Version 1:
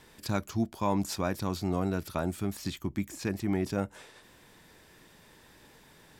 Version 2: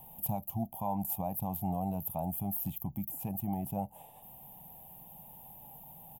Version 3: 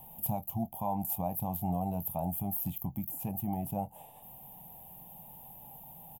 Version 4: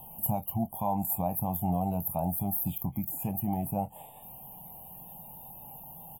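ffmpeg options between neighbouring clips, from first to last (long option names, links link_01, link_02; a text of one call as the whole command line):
ffmpeg -i in.wav -af "highshelf=frequency=10000:gain=8.5,alimiter=level_in=1.5dB:limit=-24dB:level=0:latency=1:release=374,volume=-1.5dB,firequalizer=gain_entry='entry(100,0);entry(150,7);entry(360,-14);entry(780,13);entry(1400,-28);entry(2900,-6);entry(4300,-27);entry(13000,15)':delay=0.05:min_phase=1" out.wav
ffmpeg -i in.wav -filter_complex "[0:a]asplit=2[link_01][link_02];[link_02]adelay=23,volume=-13dB[link_03];[link_01][link_03]amix=inputs=2:normalize=0,volume=1dB" out.wav
ffmpeg -i in.wav -af "volume=3.5dB" -ar 44100 -c:a wmav2 -b:a 64k out.wma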